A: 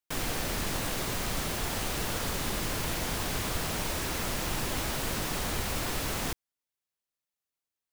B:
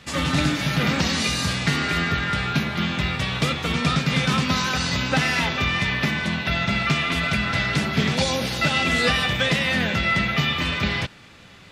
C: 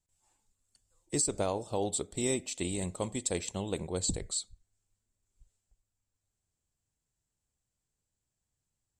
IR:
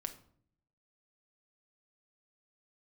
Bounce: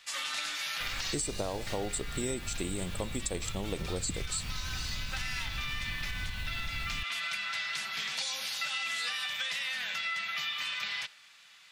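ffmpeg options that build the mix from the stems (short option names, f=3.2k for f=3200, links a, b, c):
-filter_complex "[0:a]adelay=700,volume=-12.5dB[a];[1:a]highpass=1k,highshelf=f=2.6k:g=8.5,volume=-13.5dB,asplit=2[b][c];[c]volume=-7dB[d];[2:a]volume=2.5dB,asplit=2[e][f];[f]apad=whole_len=516704[g];[b][g]sidechaincompress=threshold=-37dB:ratio=8:attack=16:release=1180[h];[a][h]amix=inputs=2:normalize=0,asubboost=boost=9.5:cutoff=140,acompressor=threshold=-32dB:ratio=6,volume=0dB[i];[3:a]atrim=start_sample=2205[j];[d][j]afir=irnorm=-1:irlink=0[k];[e][i][k]amix=inputs=3:normalize=0,acompressor=threshold=-30dB:ratio=6"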